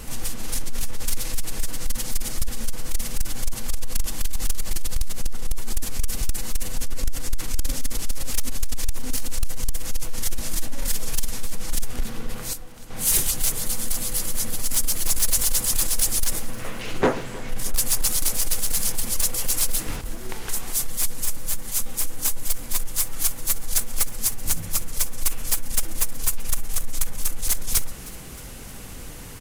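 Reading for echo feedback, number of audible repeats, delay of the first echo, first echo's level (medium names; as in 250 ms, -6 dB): 57%, 4, 312 ms, -20.0 dB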